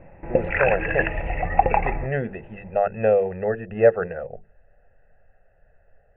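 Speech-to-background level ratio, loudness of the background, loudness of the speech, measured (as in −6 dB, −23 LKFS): −0.5 dB, −24.0 LKFS, −24.5 LKFS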